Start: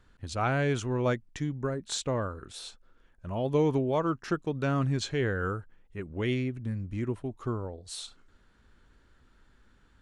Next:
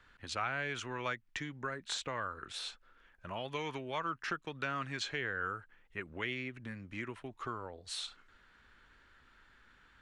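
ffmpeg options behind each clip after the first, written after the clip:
-filter_complex "[0:a]equalizer=f=2000:w=0.43:g=14.5,acrossover=split=170|1100[s0][s1][s2];[s0]acompressor=threshold=0.00501:ratio=4[s3];[s1]acompressor=threshold=0.0178:ratio=4[s4];[s2]acompressor=threshold=0.0355:ratio=4[s5];[s3][s4][s5]amix=inputs=3:normalize=0,volume=0.422"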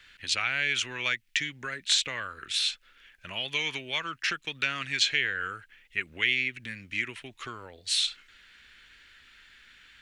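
-af "highshelf=f=1600:t=q:w=1.5:g=13"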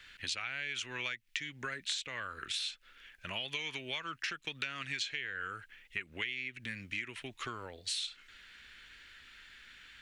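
-af "acompressor=threshold=0.0178:ratio=6"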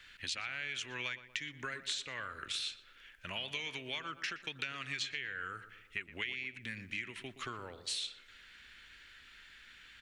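-filter_complex "[0:a]asplit=2[s0][s1];[s1]adelay=120,lowpass=f=1700:p=1,volume=0.251,asplit=2[s2][s3];[s3]adelay=120,lowpass=f=1700:p=1,volume=0.54,asplit=2[s4][s5];[s5]adelay=120,lowpass=f=1700:p=1,volume=0.54,asplit=2[s6][s7];[s7]adelay=120,lowpass=f=1700:p=1,volume=0.54,asplit=2[s8][s9];[s9]adelay=120,lowpass=f=1700:p=1,volume=0.54,asplit=2[s10][s11];[s11]adelay=120,lowpass=f=1700:p=1,volume=0.54[s12];[s0][s2][s4][s6][s8][s10][s12]amix=inputs=7:normalize=0,volume=0.841"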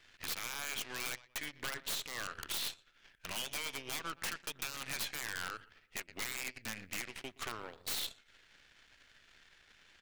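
-af "aeval=exprs='(mod(39.8*val(0)+1,2)-1)/39.8':c=same,aeval=exprs='0.0251*(cos(1*acos(clip(val(0)/0.0251,-1,1)))-cos(1*PI/2))+0.00316*(cos(6*acos(clip(val(0)/0.0251,-1,1)))-cos(6*PI/2))+0.00251*(cos(7*acos(clip(val(0)/0.0251,-1,1)))-cos(7*PI/2))':c=same,volume=1.12"

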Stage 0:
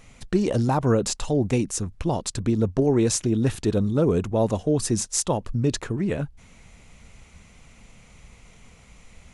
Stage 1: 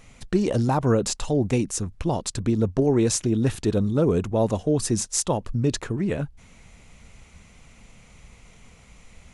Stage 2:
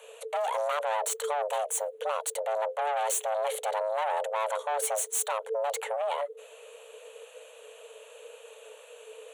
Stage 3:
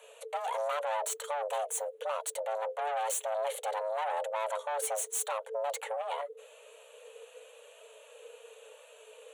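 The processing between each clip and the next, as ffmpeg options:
-af anull
-af "aeval=exprs='(tanh(22.4*val(0)+0.2)-tanh(0.2))/22.4':c=same,afreqshift=430,aexciter=amount=1:drive=2.1:freq=2700"
-af "flanger=delay=3:depth=1.3:regen=-42:speed=0.89:shape=triangular"

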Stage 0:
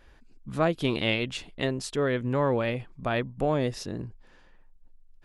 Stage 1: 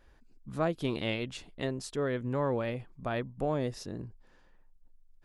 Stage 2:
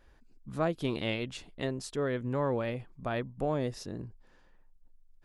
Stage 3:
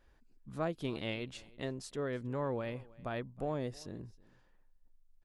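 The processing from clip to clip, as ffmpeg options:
-af "equalizer=f=2700:t=o:w=1.3:g=-4,volume=0.562"
-af anull
-af "aecho=1:1:319:0.0708,volume=0.531"

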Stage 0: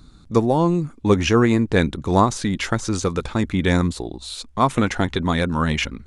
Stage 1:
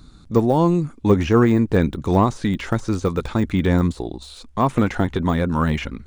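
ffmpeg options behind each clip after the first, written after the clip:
-af "deesser=0.95,volume=1.19"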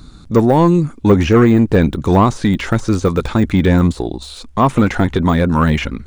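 -af "acontrast=88"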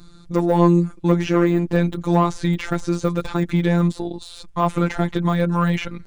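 -af "afftfilt=real='hypot(re,im)*cos(PI*b)':imag='0':win_size=1024:overlap=0.75,volume=0.75"

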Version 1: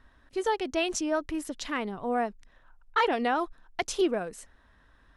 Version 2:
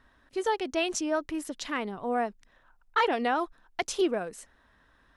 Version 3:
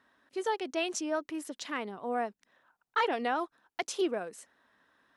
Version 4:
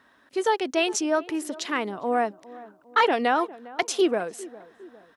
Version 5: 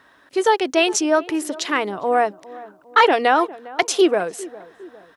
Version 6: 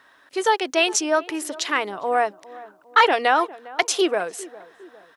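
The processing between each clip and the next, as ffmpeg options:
-af "lowshelf=f=95:g=-8"
-af "highpass=200,volume=0.668"
-filter_complex "[0:a]asplit=2[s0][s1];[s1]adelay=405,lowpass=f=1000:p=1,volume=0.133,asplit=2[s2][s3];[s3]adelay=405,lowpass=f=1000:p=1,volume=0.52,asplit=2[s4][s5];[s5]adelay=405,lowpass=f=1000:p=1,volume=0.52,asplit=2[s6][s7];[s7]adelay=405,lowpass=f=1000:p=1,volume=0.52[s8];[s0][s2][s4][s6][s8]amix=inputs=5:normalize=0,volume=2.66"
-af "equalizer=f=230:t=o:w=0.23:g=-10,volume=2.11"
-af "lowshelf=f=410:g=-10"

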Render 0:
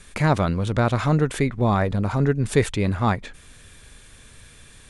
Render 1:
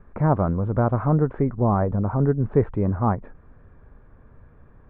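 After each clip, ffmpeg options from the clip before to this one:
-af "lowpass=f=1200:w=0.5412,lowpass=f=1200:w=1.3066"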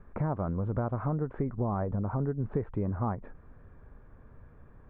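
-af "acompressor=threshold=0.0631:ratio=6,volume=0.708"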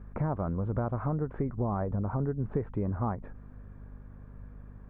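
-af "aeval=exprs='val(0)+0.00501*(sin(2*PI*50*n/s)+sin(2*PI*2*50*n/s)/2+sin(2*PI*3*50*n/s)/3+sin(2*PI*4*50*n/s)/4+sin(2*PI*5*50*n/s)/5)':c=same"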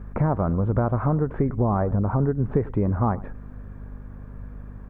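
-af "aecho=1:1:96:0.1,volume=2.66"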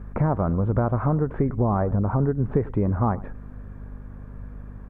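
-af "aresample=32000,aresample=44100"

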